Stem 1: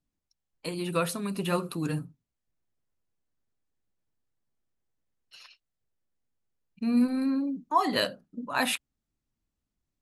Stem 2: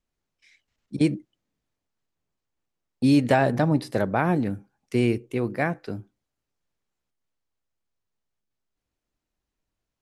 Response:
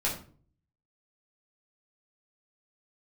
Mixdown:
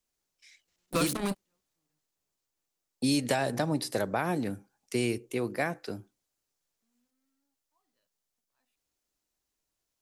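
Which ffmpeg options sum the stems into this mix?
-filter_complex "[0:a]acrusher=bits=4:mix=0:aa=0.5,volume=1.5dB[link_01];[1:a]bass=frequency=250:gain=-7,treble=frequency=4000:gain=10,volume=-2dB,asplit=2[link_02][link_03];[link_03]apad=whole_len=441873[link_04];[link_01][link_04]sidechaingate=range=-57dB:threshold=-54dB:ratio=16:detection=peak[link_05];[link_05][link_02]amix=inputs=2:normalize=0,acrossover=split=130|3000[link_06][link_07][link_08];[link_07]acompressor=threshold=-25dB:ratio=6[link_09];[link_06][link_09][link_08]amix=inputs=3:normalize=0"

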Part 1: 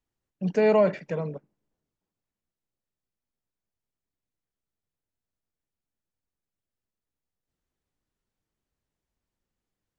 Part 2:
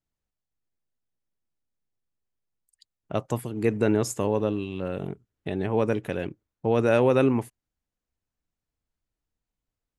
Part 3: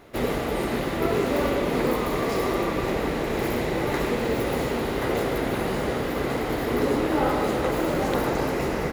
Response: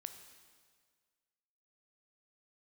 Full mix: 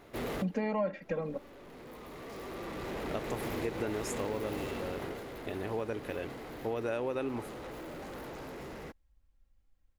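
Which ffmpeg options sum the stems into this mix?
-filter_complex "[0:a]bass=frequency=250:gain=3,treble=frequency=4000:gain=-8,aecho=1:1:3.7:0.83,asubboost=boost=6.5:cutoff=85,volume=0dB,asplit=2[link_01][link_02];[1:a]equalizer=frequency=160:width_type=o:width=0.75:gain=-14,volume=-6dB[link_03];[2:a]asoftclip=type=tanh:threshold=-27dB,volume=-5.5dB,afade=type=out:start_time=4.49:duration=0.75:silence=0.398107[link_04];[link_02]apad=whole_len=393436[link_05];[link_04][link_05]sidechaincompress=threshold=-39dB:ratio=12:attack=25:release=1460[link_06];[link_01][link_03][link_06]amix=inputs=3:normalize=0,acompressor=threshold=-31dB:ratio=4"

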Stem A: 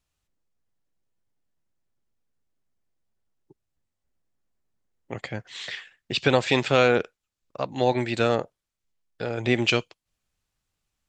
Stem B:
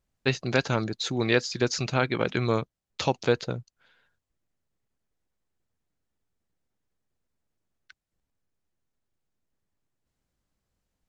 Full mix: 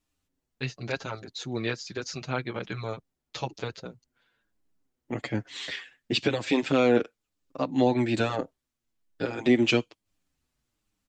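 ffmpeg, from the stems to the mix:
ffmpeg -i stem1.wav -i stem2.wav -filter_complex "[0:a]equalizer=frequency=280:width=2.5:gain=11,alimiter=limit=-12dB:level=0:latency=1:release=343,volume=2.5dB[link_01];[1:a]adelay=350,volume=-4dB[link_02];[link_01][link_02]amix=inputs=2:normalize=0,asplit=2[link_03][link_04];[link_04]adelay=6.9,afreqshift=-1.1[link_05];[link_03][link_05]amix=inputs=2:normalize=1" out.wav

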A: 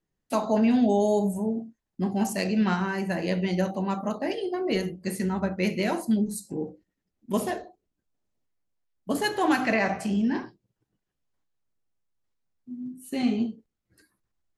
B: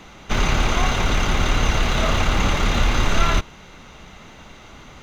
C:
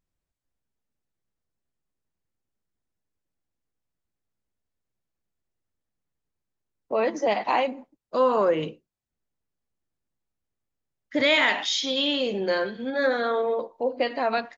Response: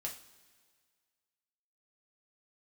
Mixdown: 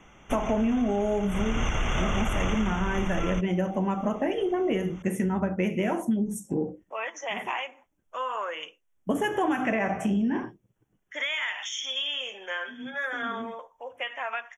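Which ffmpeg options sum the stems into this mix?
-filter_complex "[0:a]highshelf=frequency=3700:gain=-8.5,volume=0dB[link_01];[1:a]lowpass=7600,volume=-4.5dB,afade=type=in:start_time=1.29:duration=0.4:silence=0.237137,afade=type=out:start_time=2.51:duration=0.29:silence=0.354813[link_02];[2:a]highpass=1300,acompressor=threshold=-28dB:ratio=6,volume=-5dB,asplit=2[link_03][link_04];[link_04]apad=whole_len=642565[link_05];[link_01][link_05]sidechaincompress=threshold=-59dB:ratio=10:attack=22:release=216[link_06];[link_06][link_02][link_03]amix=inputs=3:normalize=0,acontrast=73,asuperstop=centerf=4400:order=20:qfactor=2.3,acompressor=threshold=-23dB:ratio=6"

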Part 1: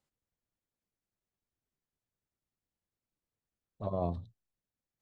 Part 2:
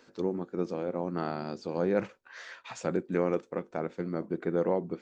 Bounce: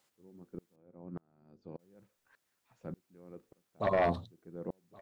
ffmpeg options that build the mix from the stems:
ffmpeg -i stem1.wav -i stem2.wav -filter_complex "[0:a]highpass=frequency=560:poles=1,aeval=exprs='0.0596*sin(PI/2*2.24*val(0)/0.0596)':channel_layout=same,volume=2.5dB,asplit=3[link_01][link_02][link_03];[link_01]atrim=end=0.76,asetpts=PTS-STARTPTS,afade=type=out:start_time=0.756:duration=0.004:curve=hsin[link_04];[link_02]atrim=start=0.76:end=1.79,asetpts=PTS-STARTPTS,volume=0[link_05];[link_03]atrim=start=1.79,asetpts=PTS-STARTPTS,afade=type=in:duration=0.004:curve=hsin[link_06];[link_04][link_05][link_06]concat=n=3:v=0:a=1,asplit=2[link_07][link_08];[link_08]volume=-24dB[link_09];[1:a]aemphasis=mode=reproduction:type=riaa,aeval=exprs='val(0)*pow(10,-37*if(lt(mod(-1.7*n/s,1),2*abs(-1.7)/1000),1-mod(-1.7*n/s,1)/(2*abs(-1.7)/1000),(mod(-1.7*n/s,1)-2*abs(-1.7)/1000)/(1-2*abs(-1.7)/1000))/20)':channel_layout=same,volume=-13dB[link_10];[link_09]aecho=0:1:1121:1[link_11];[link_07][link_10][link_11]amix=inputs=3:normalize=0" out.wav

